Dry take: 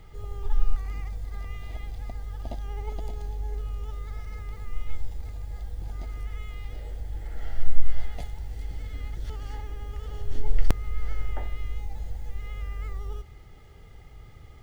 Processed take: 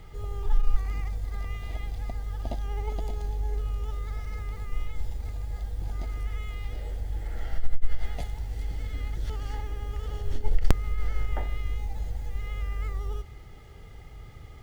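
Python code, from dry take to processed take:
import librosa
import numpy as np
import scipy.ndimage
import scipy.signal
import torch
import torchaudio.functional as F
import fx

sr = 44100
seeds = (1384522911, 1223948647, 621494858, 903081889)

y = fx.tube_stage(x, sr, drive_db=9.0, bias=0.3)
y = F.gain(torch.from_numpy(y), 3.5).numpy()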